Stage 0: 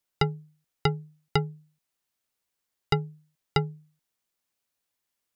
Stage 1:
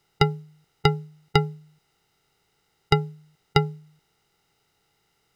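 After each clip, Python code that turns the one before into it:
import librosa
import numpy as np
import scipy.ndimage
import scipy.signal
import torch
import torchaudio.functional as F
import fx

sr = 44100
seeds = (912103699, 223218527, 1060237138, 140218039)

y = fx.bin_compress(x, sr, power=0.6)
y = fx.upward_expand(y, sr, threshold_db=-42.0, expansion=1.5)
y = y * 10.0 ** (5.0 / 20.0)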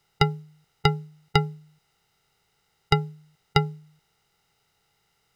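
y = fx.peak_eq(x, sr, hz=310.0, db=-6.5, octaves=0.84)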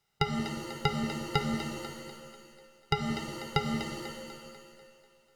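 y = fx.echo_split(x, sr, split_hz=370.0, low_ms=179, high_ms=246, feedback_pct=52, wet_db=-10)
y = fx.rev_shimmer(y, sr, seeds[0], rt60_s=1.5, semitones=7, shimmer_db=-2, drr_db=5.0)
y = y * 10.0 ** (-8.0 / 20.0)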